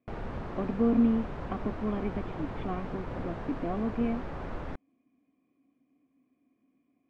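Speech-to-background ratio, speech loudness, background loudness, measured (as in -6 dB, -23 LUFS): 7.5 dB, -32.0 LUFS, -39.5 LUFS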